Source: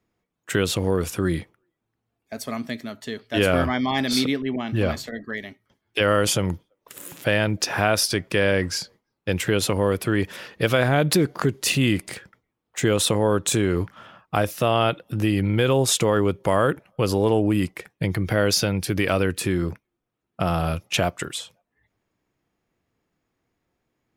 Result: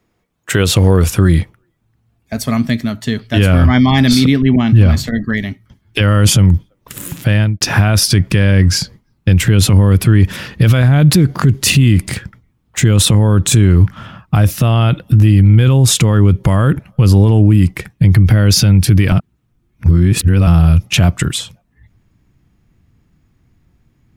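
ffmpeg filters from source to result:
-filter_complex "[0:a]asplit=4[a][b][c][d];[a]atrim=end=7.61,asetpts=PTS-STARTPTS,afade=t=out:st=7.04:d=0.57[e];[b]atrim=start=7.61:end=19.122,asetpts=PTS-STARTPTS,afade=t=in:d=0.004:c=hsin[f];[c]atrim=start=19.118:end=20.472,asetpts=PTS-STARTPTS,areverse[g];[d]atrim=start=20.468[h];[e][f]concat=n=2:v=0:a=1[i];[i][g]acrossfade=d=0.004:c1=hsin:c2=hsin[j];[j][h]acrossfade=d=0.004:c1=hsin:c2=hsin,asubboost=boost=8:cutoff=170,alimiter=level_in=12dB:limit=-1dB:release=50:level=0:latency=1,volume=-1dB"

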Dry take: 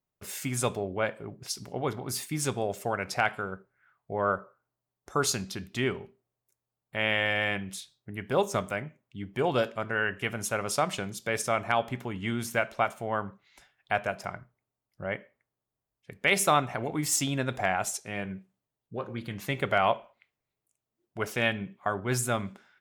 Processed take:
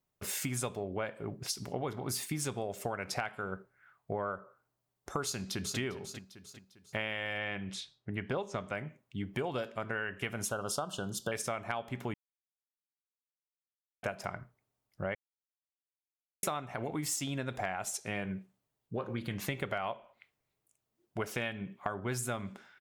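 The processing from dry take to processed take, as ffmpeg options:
-filter_complex "[0:a]asplit=2[a][b];[b]afade=t=in:st=5.24:d=0.01,afade=t=out:st=5.78:d=0.01,aecho=0:1:400|800|1200|1600:0.251189|0.100475|0.0401902|0.0160761[c];[a][c]amix=inputs=2:normalize=0,asettb=1/sr,asplit=3[d][e][f];[d]atrim=end=7.384[g];[e]atrim=start=7.38:end=8.75,asetpts=PTS-STARTPTS,afade=t=in:d=0.004:c=qsin,afade=t=out:st=1.366:d=0.004:c=qsin,lowpass=5.1k[h];[f]atrim=start=8.746[i];[g][h]acrossfade=d=0.004:c1=hsin:c2=qsin[j];[j][i]acrossfade=d=0.004:c1=qsin:c2=hsin,asettb=1/sr,asplit=3[k][l][m];[k]atrim=end=10.514[n];[l]atrim=start=10.51:end=11.32,asetpts=PTS-STARTPTS,afade=t=in:d=0.004:c=qsin,afade=t=out:st=0.806:d=0.004:c=qsin,asuperstop=centerf=2100:order=12:qfactor=1.8[o];[m]atrim=start=11.316[p];[n][o]acrossfade=d=0.004:c1=hsin:c2=qsin[q];[q][p]acrossfade=d=0.004:c1=qsin:c2=hsin,asplit=5[r][s][t][u][v];[r]atrim=end=12.14,asetpts=PTS-STARTPTS,afade=t=out:st=12.136:d=0.004:c=hsin[w];[s]atrim=start=12.14:end=14.03,asetpts=PTS-STARTPTS,volume=0[x];[t]atrim=start=14.03:end=15.15,asetpts=PTS-STARTPTS,afade=t=in:d=0.004:c=hsin,afade=t=out:st=1.116:d=0.004:c=hsin[y];[u]atrim=start=15.15:end=16.43,asetpts=PTS-STARTPTS,volume=0[z];[v]atrim=start=16.43,asetpts=PTS-STARTPTS,afade=t=in:d=0.004:c=hsin[aa];[w][x][y][z][aa]concat=n=5:v=0:a=1,acompressor=threshold=-35dB:ratio=10,volume=3dB"

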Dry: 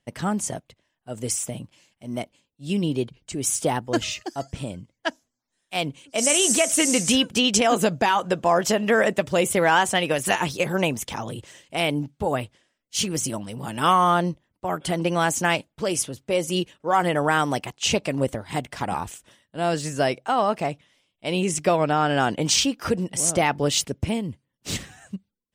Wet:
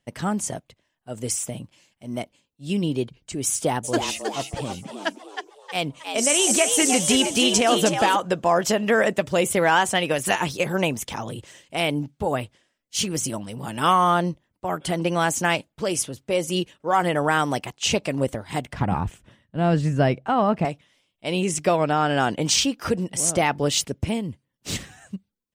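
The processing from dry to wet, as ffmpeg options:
-filter_complex "[0:a]asplit=3[a][b][c];[a]afade=t=out:st=3.83:d=0.02[d];[b]asplit=6[e][f][g][h][i][j];[f]adelay=315,afreqshift=100,volume=-6.5dB[k];[g]adelay=630,afreqshift=200,volume=-13.4dB[l];[h]adelay=945,afreqshift=300,volume=-20.4dB[m];[i]adelay=1260,afreqshift=400,volume=-27.3dB[n];[j]adelay=1575,afreqshift=500,volume=-34.2dB[o];[e][k][l][m][n][o]amix=inputs=6:normalize=0,afade=t=in:st=3.83:d=0.02,afade=t=out:st=8.15:d=0.02[p];[c]afade=t=in:st=8.15:d=0.02[q];[d][p][q]amix=inputs=3:normalize=0,asettb=1/sr,asplit=3[r][s][t];[r]atrim=end=18.734[u];[s]atrim=start=18.73:end=20.65,asetpts=PTS-STARTPTS,afade=t=in:d=0.004:c=qsin,afade=t=out:st=1.916:d=0.004:c=qsin,bass=f=250:g=12,treble=f=4k:g=-13[v];[t]atrim=start=20.646[w];[u][v]acrossfade=d=0.004:c1=hsin:c2=qsin[x];[x][w]acrossfade=d=0.004:c1=qsin:c2=hsin"

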